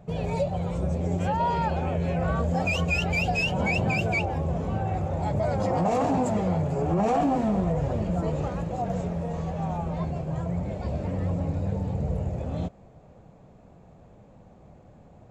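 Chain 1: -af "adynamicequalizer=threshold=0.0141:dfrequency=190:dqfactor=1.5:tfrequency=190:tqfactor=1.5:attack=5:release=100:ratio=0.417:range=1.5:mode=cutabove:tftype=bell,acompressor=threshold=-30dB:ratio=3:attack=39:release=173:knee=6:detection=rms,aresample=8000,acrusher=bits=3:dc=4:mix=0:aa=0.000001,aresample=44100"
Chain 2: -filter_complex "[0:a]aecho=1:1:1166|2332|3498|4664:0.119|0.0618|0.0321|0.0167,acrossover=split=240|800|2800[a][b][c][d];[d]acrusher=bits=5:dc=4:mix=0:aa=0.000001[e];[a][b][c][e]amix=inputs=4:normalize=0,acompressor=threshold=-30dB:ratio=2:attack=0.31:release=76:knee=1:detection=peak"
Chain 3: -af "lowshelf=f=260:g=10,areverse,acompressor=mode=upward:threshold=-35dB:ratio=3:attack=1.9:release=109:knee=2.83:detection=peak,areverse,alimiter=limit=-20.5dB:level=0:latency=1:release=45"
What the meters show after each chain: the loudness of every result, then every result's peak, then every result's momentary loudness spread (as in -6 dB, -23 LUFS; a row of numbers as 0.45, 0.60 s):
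-35.5, -32.0, -28.0 LUFS; -19.0, -21.0, -20.5 dBFS; 3, 16, 16 LU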